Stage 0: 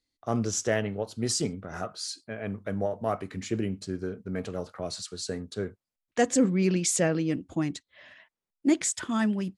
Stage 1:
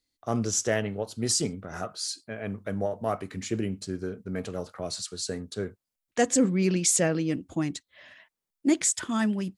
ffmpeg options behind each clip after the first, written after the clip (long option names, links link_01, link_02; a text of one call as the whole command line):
ffmpeg -i in.wav -af "highshelf=frequency=6200:gain=6.5" out.wav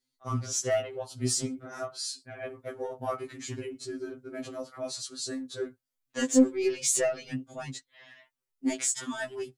ffmpeg -i in.wav -af "asoftclip=type=tanh:threshold=-12dB,afftfilt=real='re*2.45*eq(mod(b,6),0)':imag='im*2.45*eq(mod(b,6),0)':win_size=2048:overlap=0.75" out.wav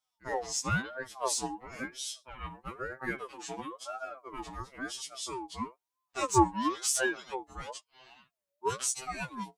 ffmpeg -i in.wav -af "aeval=exprs='val(0)*sin(2*PI*800*n/s+800*0.3/1*sin(2*PI*1*n/s))':channel_layout=same" out.wav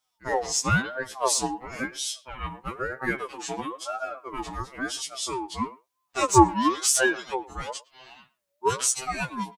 ffmpeg -i in.wav -filter_complex "[0:a]asplit=2[link_01][link_02];[link_02]adelay=110,highpass=300,lowpass=3400,asoftclip=type=hard:threshold=-19dB,volume=-20dB[link_03];[link_01][link_03]amix=inputs=2:normalize=0,volume=7.5dB" out.wav